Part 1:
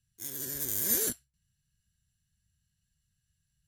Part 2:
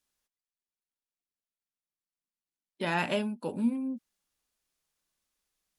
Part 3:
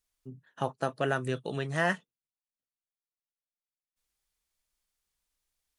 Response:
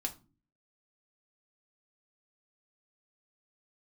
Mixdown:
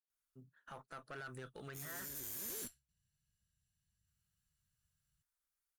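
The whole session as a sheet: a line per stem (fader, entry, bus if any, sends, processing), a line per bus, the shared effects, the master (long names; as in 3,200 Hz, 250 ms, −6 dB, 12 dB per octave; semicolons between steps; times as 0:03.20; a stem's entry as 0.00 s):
−6.0 dB, 1.55 s, no bus, no send, no processing
muted
−13.0 dB, 0.10 s, bus A, no send, parametric band 1,400 Hz +12.5 dB 0.61 octaves; floating-point word with a short mantissa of 6 bits
bus A: 0.0 dB, high-shelf EQ 8,800 Hz +11.5 dB; brickwall limiter −34 dBFS, peak gain reduction 11.5 dB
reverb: not used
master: tube saturation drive 42 dB, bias 0.35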